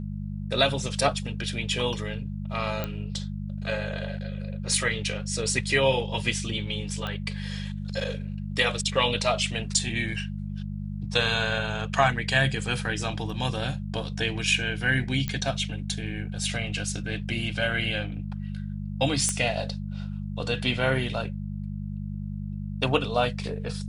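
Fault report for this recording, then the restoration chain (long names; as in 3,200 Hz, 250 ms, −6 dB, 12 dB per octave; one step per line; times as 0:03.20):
mains hum 50 Hz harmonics 4 −33 dBFS
0:02.84: click −15 dBFS
0:07.07: click −19 dBFS
0:15.28: click −16 dBFS
0:19.29: click −12 dBFS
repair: click removal
hum removal 50 Hz, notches 4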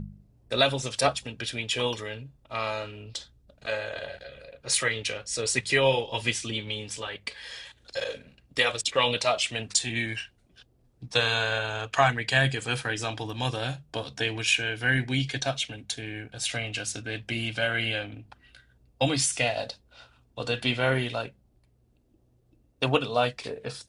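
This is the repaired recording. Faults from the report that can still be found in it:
none of them is left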